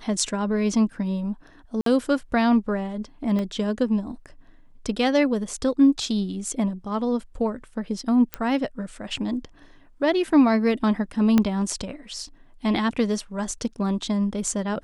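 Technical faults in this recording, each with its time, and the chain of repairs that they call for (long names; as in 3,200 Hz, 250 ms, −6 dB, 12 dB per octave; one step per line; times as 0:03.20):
0:01.81–0:01.86: drop-out 53 ms
0:03.39: click −18 dBFS
0:08.34: click −11 dBFS
0:11.38: click −7 dBFS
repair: click removal
repair the gap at 0:01.81, 53 ms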